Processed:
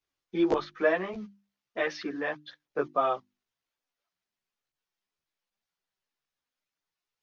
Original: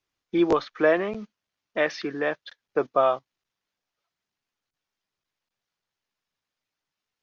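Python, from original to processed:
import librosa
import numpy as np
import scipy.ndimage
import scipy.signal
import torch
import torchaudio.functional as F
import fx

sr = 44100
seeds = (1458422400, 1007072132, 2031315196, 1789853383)

y = fx.chorus_voices(x, sr, voices=2, hz=0.96, base_ms=13, depth_ms=3.0, mix_pct=55)
y = fx.hum_notches(y, sr, base_hz=50, count=7)
y = y * librosa.db_to_amplitude(-1.5)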